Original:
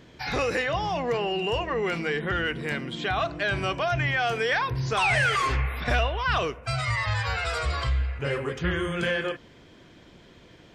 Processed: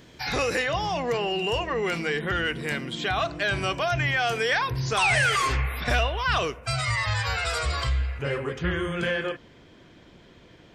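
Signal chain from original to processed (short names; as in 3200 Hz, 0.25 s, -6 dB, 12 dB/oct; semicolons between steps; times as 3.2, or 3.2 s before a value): high shelf 5100 Hz +9.5 dB, from 8.22 s -3.5 dB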